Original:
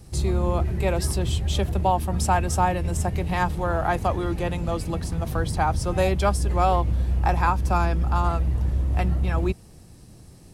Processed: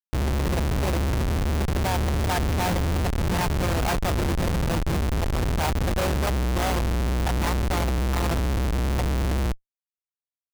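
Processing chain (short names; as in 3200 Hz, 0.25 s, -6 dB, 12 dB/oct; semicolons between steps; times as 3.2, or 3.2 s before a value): self-modulated delay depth 0.21 ms; diffused feedback echo 0.702 s, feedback 44%, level -14 dB; Schmitt trigger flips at -24.5 dBFS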